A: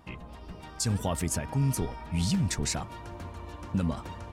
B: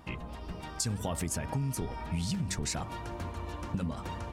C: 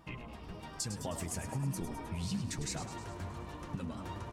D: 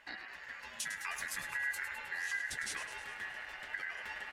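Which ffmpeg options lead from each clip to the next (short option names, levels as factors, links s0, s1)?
-af "bandreject=f=95.87:t=h:w=4,bandreject=f=191.74:t=h:w=4,bandreject=f=287.61:t=h:w=4,bandreject=f=383.48:t=h:w=4,bandreject=f=479.35:t=h:w=4,bandreject=f=575.22:t=h:w=4,bandreject=f=671.09:t=h:w=4,bandreject=f=766.96:t=h:w=4,bandreject=f=862.83:t=h:w=4,bandreject=f=958.7:t=h:w=4,bandreject=f=1054.57:t=h:w=4,bandreject=f=1150.44:t=h:w=4,acompressor=threshold=0.0251:ratio=10,volume=1.41"
-filter_complex "[0:a]flanger=delay=5.7:depth=5.3:regen=38:speed=1.1:shape=triangular,asplit=2[s0][s1];[s1]asplit=8[s2][s3][s4][s5][s6][s7][s8][s9];[s2]adelay=104,afreqshift=48,volume=0.316[s10];[s3]adelay=208,afreqshift=96,volume=0.195[s11];[s4]adelay=312,afreqshift=144,volume=0.122[s12];[s5]adelay=416,afreqshift=192,volume=0.075[s13];[s6]adelay=520,afreqshift=240,volume=0.0468[s14];[s7]adelay=624,afreqshift=288,volume=0.0288[s15];[s8]adelay=728,afreqshift=336,volume=0.018[s16];[s9]adelay=832,afreqshift=384,volume=0.0111[s17];[s10][s11][s12][s13][s14][s15][s16][s17]amix=inputs=8:normalize=0[s18];[s0][s18]amix=inputs=2:normalize=0,volume=0.841"
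-af "aeval=exprs='val(0)*sin(2*PI*1800*n/s)':c=same,volume=1.12"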